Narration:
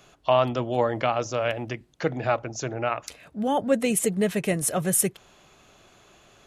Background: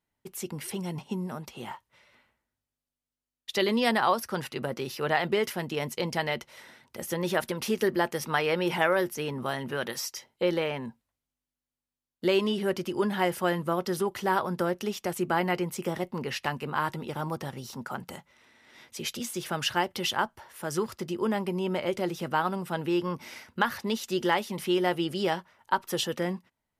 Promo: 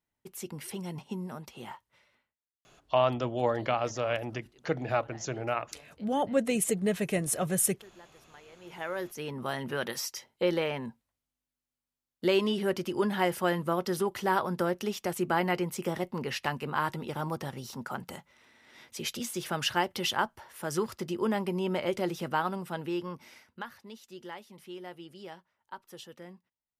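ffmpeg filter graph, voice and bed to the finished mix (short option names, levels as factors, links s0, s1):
-filter_complex "[0:a]adelay=2650,volume=0.596[s0];[1:a]volume=13.3,afade=t=out:st=1.95:d=0.4:silence=0.0668344,afade=t=in:st=8.6:d=1.06:silence=0.0473151,afade=t=out:st=22.11:d=1.64:silence=0.149624[s1];[s0][s1]amix=inputs=2:normalize=0"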